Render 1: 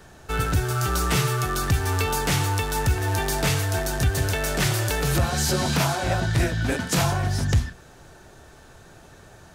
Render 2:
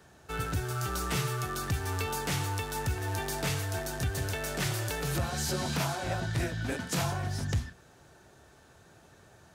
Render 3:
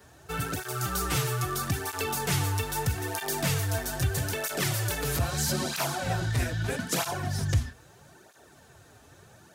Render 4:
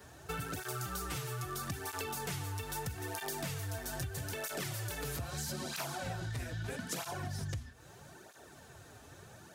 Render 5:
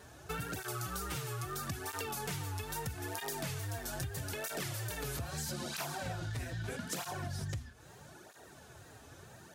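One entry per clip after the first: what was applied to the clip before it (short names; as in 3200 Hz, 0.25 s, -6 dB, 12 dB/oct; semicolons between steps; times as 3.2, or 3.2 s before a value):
HPF 63 Hz; gain -8.5 dB
high shelf 10000 Hz +7.5 dB; tape flanging out of phase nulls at 0.78 Hz, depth 6.2 ms; gain +5.5 dB
compressor 10:1, threshold -36 dBFS, peak gain reduction 17 dB
wow and flutter 69 cents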